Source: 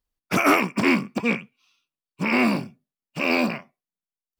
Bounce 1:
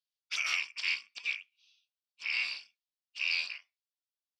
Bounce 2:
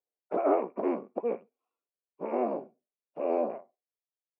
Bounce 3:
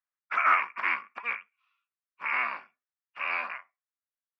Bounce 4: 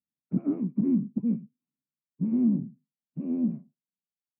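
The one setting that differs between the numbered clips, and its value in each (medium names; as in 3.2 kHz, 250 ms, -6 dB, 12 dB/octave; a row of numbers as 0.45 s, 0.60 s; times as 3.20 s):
Butterworth band-pass, frequency: 4 kHz, 540 Hz, 1.5 kHz, 190 Hz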